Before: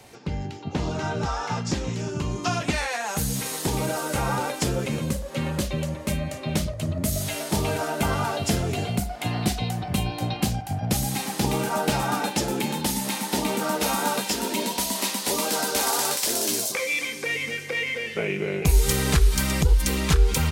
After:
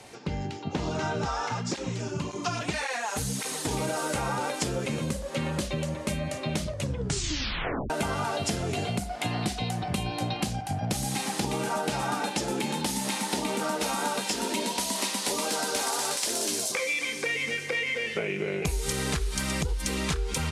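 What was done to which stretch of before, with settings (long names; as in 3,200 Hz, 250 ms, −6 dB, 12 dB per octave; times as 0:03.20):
0:01.49–0:03.71: through-zero flanger with one copy inverted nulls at 1.8 Hz, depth 6.2 ms
0:06.72: tape stop 1.18 s
whole clip: low-pass filter 11,000 Hz 24 dB per octave; low-shelf EQ 120 Hz −6.5 dB; downward compressor, threshold −27 dBFS; level +1.5 dB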